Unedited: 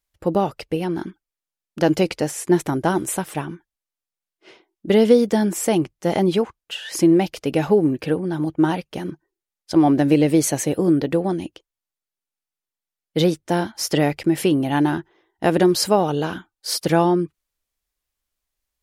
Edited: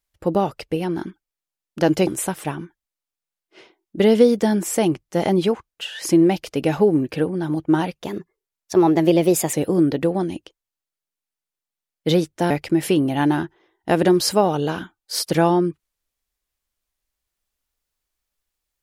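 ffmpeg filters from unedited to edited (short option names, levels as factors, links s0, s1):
-filter_complex "[0:a]asplit=5[s0][s1][s2][s3][s4];[s0]atrim=end=2.072[s5];[s1]atrim=start=2.968:end=8.924[s6];[s2]atrim=start=8.92:end=10.63,asetpts=PTS-STARTPTS,asetrate=49833,aresample=44100,atrim=end_sample=66735,asetpts=PTS-STARTPTS[s7];[s3]atrim=start=10.626:end=13.602[s8];[s4]atrim=start=14.048[s9];[s5][s6]acrossfade=d=0.004:c1=hsin:c2=hsin[s10];[s10][s7]acrossfade=d=0.004:c1=hsin:c2=hsin[s11];[s11][s8]acrossfade=d=0.004:c1=hsin:c2=hsin[s12];[s12][s9]acrossfade=d=0.004:c1=hsin:c2=hsin"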